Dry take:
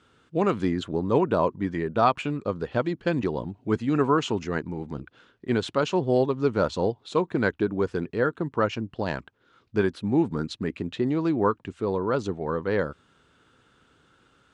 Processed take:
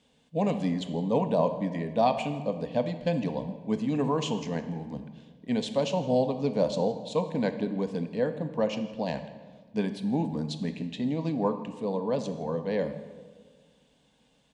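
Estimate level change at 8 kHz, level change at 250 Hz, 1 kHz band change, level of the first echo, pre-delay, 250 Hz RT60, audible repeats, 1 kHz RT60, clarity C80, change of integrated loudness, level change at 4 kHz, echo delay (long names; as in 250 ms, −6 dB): 0.0 dB, −2.5 dB, −4.5 dB, −20.5 dB, 20 ms, 1.9 s, 1, 1.4 s, 12.0 dB, −3.0 dB, −1.5 dB, 162 ms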